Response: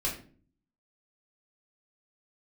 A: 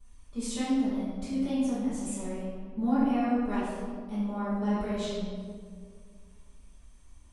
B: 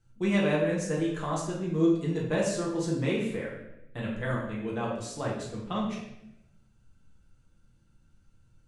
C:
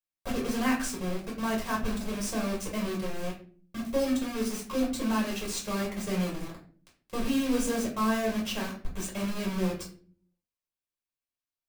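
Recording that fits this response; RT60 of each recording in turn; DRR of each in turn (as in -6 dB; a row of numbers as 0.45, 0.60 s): C; 2.0, 0.85, 0.45 s; -18.0, -5.0, -4.0 dB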